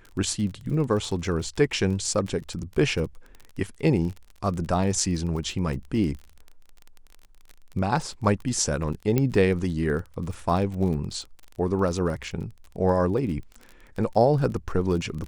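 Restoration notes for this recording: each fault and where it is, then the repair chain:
crackle 29/s -33 dBFS
9.18 pop -10 dBFS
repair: de-click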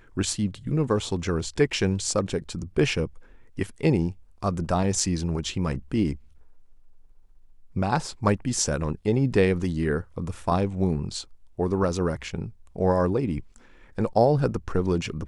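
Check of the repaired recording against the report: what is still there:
none

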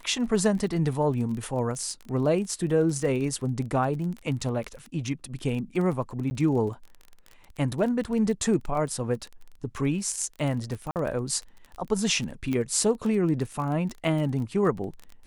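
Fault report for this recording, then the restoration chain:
crackle 23/s -32 dBFS
6.3–6.31 gap 10 ms
10.91–10.96 gap 48 ms
12.53 pop -17 dBFS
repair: de-click; interpolate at 6.3, 10 ms; interpolate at 10.91, 48 ms

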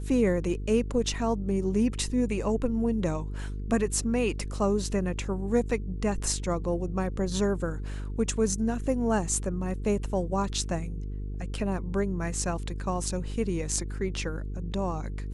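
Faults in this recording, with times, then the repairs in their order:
buzz 50 Hz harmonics 9 -34 dBFS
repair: de-hum 50 Hz, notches 9

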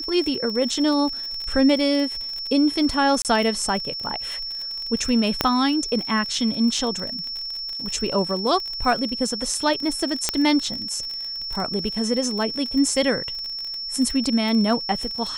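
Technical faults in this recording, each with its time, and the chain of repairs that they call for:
crackle 39/s -27 dBFS
tone 5400 Hz -28 dBFS
3.22–3.25 gap 28 ms
5.41 pop -3 dBFS
10.29 pop -4 dBFS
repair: de-click; notch 5400 Hz, Q 30; interpolate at 3.22, 28 ms

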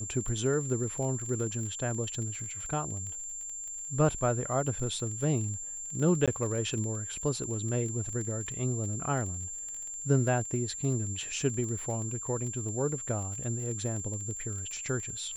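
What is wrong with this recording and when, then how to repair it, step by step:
crackle 24/s -36 dBFS
tone 7300 Hz -37 dBFS
6.26–6.28 gap 16 ms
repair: de-click; notch 7300 Hz, Q 30; interpolate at 6.26, 16 ms

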